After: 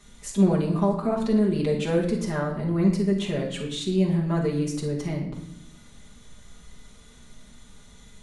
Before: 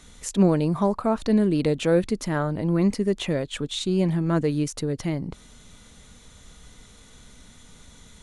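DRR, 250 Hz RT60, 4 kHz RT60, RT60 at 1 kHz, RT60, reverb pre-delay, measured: -5.0 dB, 1.2 s, 0.60 s, 0.70 s, 0.75 s, 5 ms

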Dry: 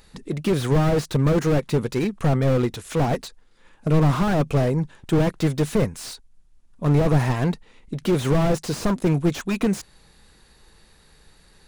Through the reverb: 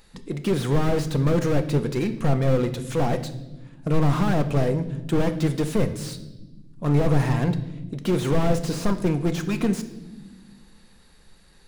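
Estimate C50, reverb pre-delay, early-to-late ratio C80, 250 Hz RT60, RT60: 12.5 dB, 4 ms, 15.0 dB, 2.2 s, 1.1 s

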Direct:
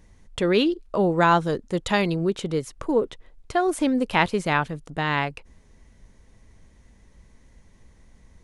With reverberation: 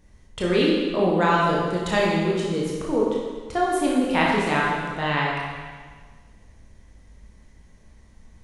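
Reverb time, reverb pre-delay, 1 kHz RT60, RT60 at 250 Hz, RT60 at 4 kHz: 1.6 s, 19 ms, 1.6 s, 1.6 s, 1.5 s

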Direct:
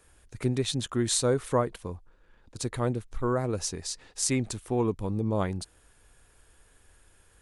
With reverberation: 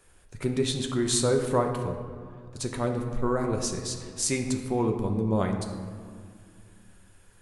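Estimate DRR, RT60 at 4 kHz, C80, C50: 3.0 dB, 1.0 s, 7.5 dB, 6.0 dB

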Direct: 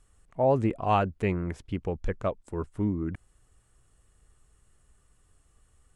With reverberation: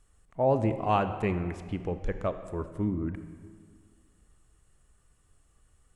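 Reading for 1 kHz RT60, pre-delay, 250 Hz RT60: 2.0 s, 25 ms, 2.1 s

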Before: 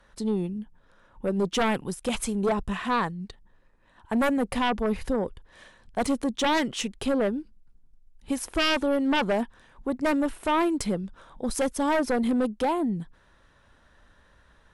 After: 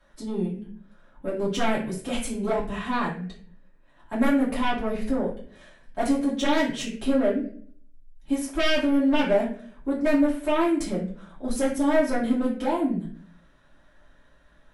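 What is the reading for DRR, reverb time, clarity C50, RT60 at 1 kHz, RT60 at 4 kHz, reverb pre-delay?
-9.0 dB, 0.50 s, 6.0 dB, 0.45 s, 0.35 s, 3 ms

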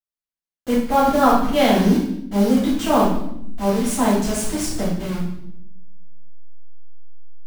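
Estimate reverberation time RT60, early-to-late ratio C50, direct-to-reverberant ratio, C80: 0.80 s, 2.0 dB, -10.0 dB, 6.0 dB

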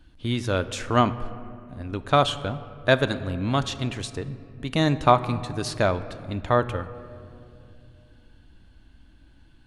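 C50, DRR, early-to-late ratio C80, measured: 14.0 dB, 12.0 dB, 15.0 dB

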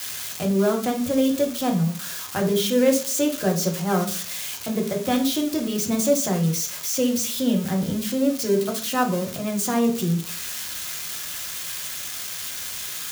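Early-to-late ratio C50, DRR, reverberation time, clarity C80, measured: 10.0 dB, 1.5 dB, 0.45 s, 14.0 dB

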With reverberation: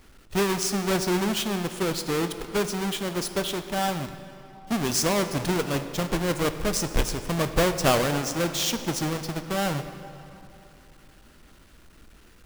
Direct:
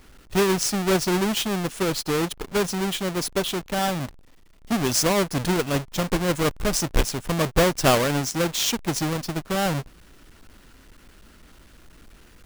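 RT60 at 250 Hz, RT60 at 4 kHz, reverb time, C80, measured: 3.1 s, 2.1 s, 3.0 s, 10.5 dB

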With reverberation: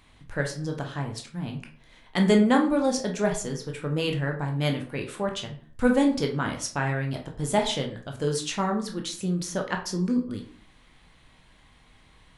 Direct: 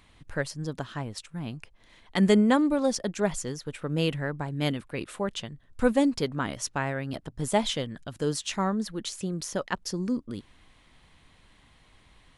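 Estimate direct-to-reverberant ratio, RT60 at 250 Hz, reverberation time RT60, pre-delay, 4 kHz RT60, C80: 2.0 dB, 0.55 s, 0.50 s, 13 ms, 0.30 s, 14.0 dB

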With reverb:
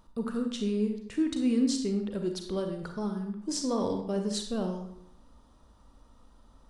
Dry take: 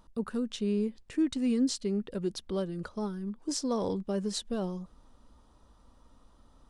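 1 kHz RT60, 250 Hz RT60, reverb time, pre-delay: 0.65 s, 0.70 s, 0.70 s, 33 ms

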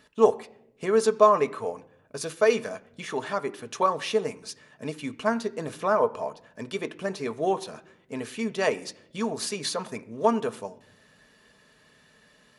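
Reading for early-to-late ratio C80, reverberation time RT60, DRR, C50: 21.5 dB, no single decay rate, 8.5 dB, 19.5 dB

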